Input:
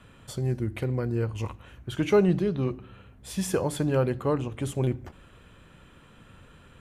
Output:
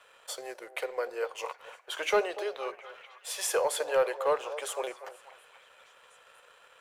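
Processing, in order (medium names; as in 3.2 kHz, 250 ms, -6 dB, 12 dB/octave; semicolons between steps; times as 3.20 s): steep high-pass 470 Hz 48 dB/octave; waveshaping leveller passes 1; repeats whose band climbs or falls 240 ms, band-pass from 630 Hz, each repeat 0.7 oct, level -11 dB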